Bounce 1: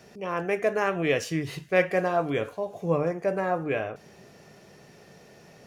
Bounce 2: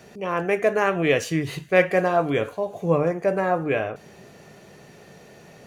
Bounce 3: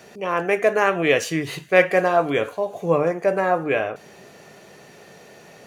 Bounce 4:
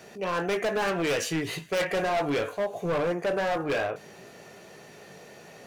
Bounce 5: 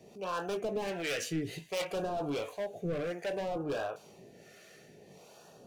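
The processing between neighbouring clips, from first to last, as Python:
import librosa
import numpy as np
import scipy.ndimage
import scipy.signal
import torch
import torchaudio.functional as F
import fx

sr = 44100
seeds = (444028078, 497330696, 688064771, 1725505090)

y1 = fx.notch(x, sr, hz=5300.0, q=8.4)
y1 = y1 * 10.0 ** (4.5 / 20.0)
y2 = fx.low_shelf(y1, sr, hz=200.0, db=-10.5)
y2 = y2 * 10.0 ** (3.5 / 20.0)
y3 = 10.0 ** (-15.0 / 20.0) * np.tanh(y2 / 10.0 ** (-15.0 / 20.0))
y3 = fx.chorus_voices(y3, sr, voices=2, hz=0.67, base_ms=19, depth_ms=2.2, mix_pct=25)
y3 = np.clip(y3, -10.0 ** (-23.5 / 20.0), 10.0 ** (-23.5 / 20.0))
y4 = fx.harmonic_tremolo(y3, sr, hz=1.4, depth_pct=70, crossover_hz=570.0)
y4 = fx.filter_lfo_notch(y4, sr, shape='sine', hz=0.59, low_hz=920.0, high_hz=2100.0, q=1.2)
y4 = y4 * 10.0 ** (-3.0 / 20.0)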